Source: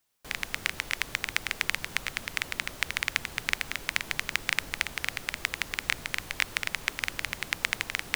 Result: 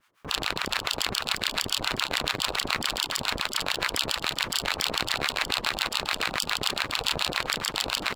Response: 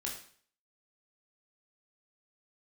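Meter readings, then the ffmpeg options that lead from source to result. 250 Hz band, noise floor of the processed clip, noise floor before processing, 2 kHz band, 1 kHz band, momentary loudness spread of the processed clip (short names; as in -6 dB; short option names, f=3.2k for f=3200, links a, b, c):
+9.0 dB, -41 dBFS, -45 dBFS, -0.5 dB, +9.0 dB, 1 LU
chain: -filter_complex "[0:a]asplit=2[a][b];[b]aecho=0:1:30|72|130.8|213.1|328.4:0.631|0.398|0.251|0.158|0.1[c];[a][c]amix=inputs=2:normalize=0,acrossover=split=4100[d][e];[e]acompressor=threshold=-48dB:ratio=4:attack=1:release=60[f];[d][f]amix=inputs=2:normalize=0,firequalizer=gain_entry='entry(710,0);entry(1100,15);entry(4100,-3);entry(15000,-13)':delay=0.05:min_phase=1,aeval=exprs='max(val(0),0)':c=same,highpass=f=57:p=1,asplit=2[g][h];[h]aecho=0:1:1118:0.15[i];[g][i]amix=inputs=2:normalize=0,afftfilt=real='re*lt(hypot(re,im),0.0562)':imag='im*lt(hypot(re,im),0.0562)':win_size=1024:overlap=0.75,acrossover=split=750[j][k];[j]aeval=exprs='val(0)*(1-1/2+1/2*cos(2*PI*7.1*n/s))':c=same[l];[k]aeval=exprs='val(0)*(1-1/2-1/2*cos(2*PI*7.1*n/s))':c=same[m];[l][m]amix=inputs=2:normalize=0,equalizer=f=14k:w=2.7:g=4,alimiter=level_in=21.5dB:limit=-1dB:release=50:level=0:latency=1,volume=-7dB"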